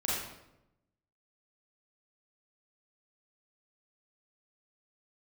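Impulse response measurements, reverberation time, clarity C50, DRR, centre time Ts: 0.90 s, -2.0 dB, -7.0 dB, 76 ms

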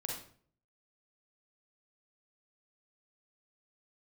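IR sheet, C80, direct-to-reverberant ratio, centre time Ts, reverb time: 7.0 dB, -1.5 dB, 42 ms, 0.50 s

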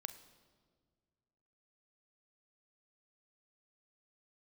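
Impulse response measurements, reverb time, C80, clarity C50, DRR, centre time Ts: 1.8 s, 14.5 dB, 13.0 dB, 10.0 dB, 9 ms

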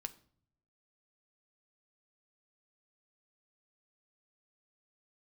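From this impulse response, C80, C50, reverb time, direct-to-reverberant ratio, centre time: 22.0 dB, 17.5 dB, no single decay rate, 8.5 dB, 4 ms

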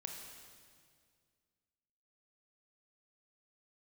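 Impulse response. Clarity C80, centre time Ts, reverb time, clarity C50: 4.5 dB, 66 ms, 2.0 s, 3.0 dB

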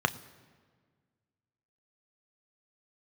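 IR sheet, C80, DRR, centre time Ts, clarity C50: 19.0 dB, 9.5 dB, 5 ms, 18.0 dB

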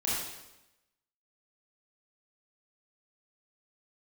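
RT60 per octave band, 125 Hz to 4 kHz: 1.0 s, 1.0 s, 0.95 s, 0.95 s, 0.90 s, 0.90 s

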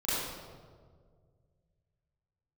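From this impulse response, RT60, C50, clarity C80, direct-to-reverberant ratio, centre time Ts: 1.8 s, -3.5 dB, -1.0 dB, -13.0 dB, 121 ms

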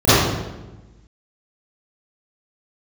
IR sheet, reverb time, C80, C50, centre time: 1.1 s, -1.5 dB, -7.5 dB, 111 ms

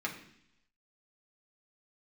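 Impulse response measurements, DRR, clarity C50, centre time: -2.5 dB, 9.5 dB, 19 ms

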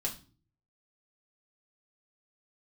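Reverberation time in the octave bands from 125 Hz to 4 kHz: 0.80 s, 0.60 s, 0.40 s, 0.35 s, 0.30 s, 0.35 s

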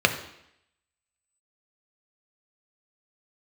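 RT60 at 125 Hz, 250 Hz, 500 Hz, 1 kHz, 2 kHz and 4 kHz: 0.70 s, 0.80 s, 0.75 s, 0.80 s, 0.80 s, 0.80 s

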